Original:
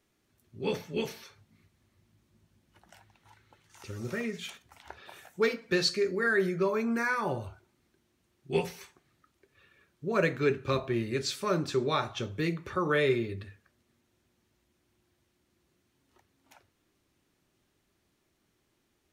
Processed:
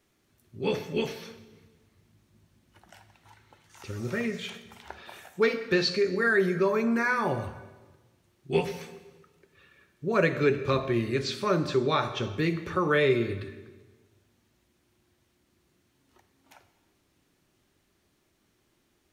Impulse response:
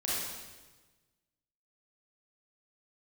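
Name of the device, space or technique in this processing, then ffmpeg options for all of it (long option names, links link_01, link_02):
ducked reverb: -filter_complex "[0:a]acrossover=split=5100[link_01][link_02];[link_02]acompressor=threshold=-56dB:ratio=4:attack=1:release=60[link_03];[link_01][link_03]amix=inputs=2:normalize=0,asplit=3[link_04][link_05][link_06];[1:a]atrim=start_sample=2205[link_07];[link_05][link_07]afir=irnorm=-1:irlink=0[link_08];[link_06]apad=whole_len=843594[link_09];[link_08][link_09]sidechaincompress=threshold=-29dB:ratio=8:attack=16:release=117,volume=-15.5dB[link_10];[link_04][link_10]amix=inputs=2:normalize=0,volume=2.5dB"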